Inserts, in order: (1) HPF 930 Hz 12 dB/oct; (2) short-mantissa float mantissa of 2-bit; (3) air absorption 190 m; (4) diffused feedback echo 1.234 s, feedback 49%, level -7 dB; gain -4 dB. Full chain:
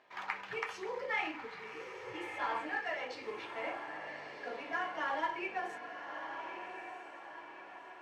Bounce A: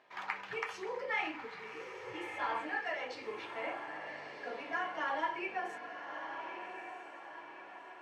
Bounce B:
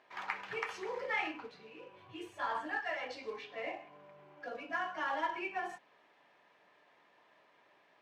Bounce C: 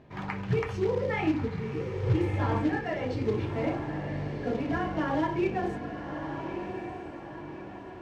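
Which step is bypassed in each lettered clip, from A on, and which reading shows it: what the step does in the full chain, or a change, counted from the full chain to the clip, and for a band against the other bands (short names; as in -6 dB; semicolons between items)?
2, distortion -20 dB; 4, echo-to-direct -6.0 dB to none; 1, 125 Hz band +31.0 dB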